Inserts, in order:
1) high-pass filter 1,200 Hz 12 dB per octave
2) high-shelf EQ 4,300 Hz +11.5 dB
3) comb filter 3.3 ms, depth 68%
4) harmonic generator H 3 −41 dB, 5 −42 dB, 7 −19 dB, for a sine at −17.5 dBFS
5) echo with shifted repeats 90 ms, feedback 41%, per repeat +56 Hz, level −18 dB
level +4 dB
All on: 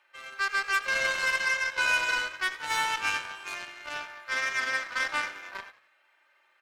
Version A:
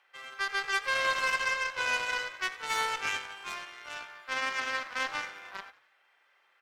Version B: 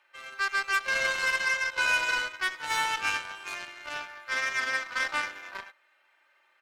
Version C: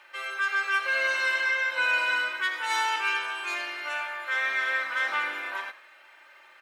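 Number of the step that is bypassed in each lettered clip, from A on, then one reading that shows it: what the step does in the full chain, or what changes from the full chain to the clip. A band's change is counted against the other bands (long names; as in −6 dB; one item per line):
3, change in crest factor +2.0 dB
5, echo-to-direct ratio −17.0 dB to none audible
4, change in crest factor −1.5 dB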